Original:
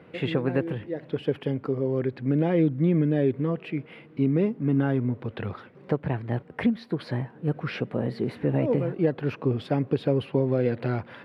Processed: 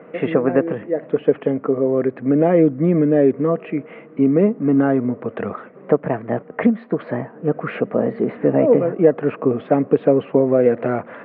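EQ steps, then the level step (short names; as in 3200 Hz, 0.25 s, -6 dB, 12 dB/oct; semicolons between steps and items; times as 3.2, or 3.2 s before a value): air absorption 100 m; speaker cabinet 180–2600 Hz, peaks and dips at 200 Hz +6 dB, 280 Hz +4 dB, 460 Hz +7 dB, 650 Hz +10 dB, 1200 Hz +8 dB, 1900 Hz +3 dB; +4.5 dB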